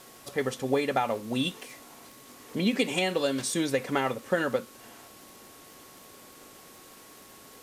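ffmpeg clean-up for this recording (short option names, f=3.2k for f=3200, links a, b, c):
-af "adeclick=t=4,bandreject=f=1.1k:w=30,afwtdn=0.0025"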